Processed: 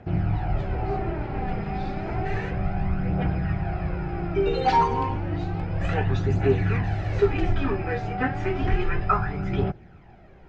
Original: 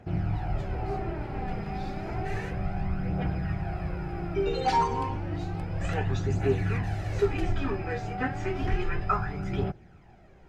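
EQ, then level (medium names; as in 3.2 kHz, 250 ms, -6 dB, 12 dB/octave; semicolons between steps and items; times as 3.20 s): low-pass 4.1 kHz 12 dB/octave; +4.5 dB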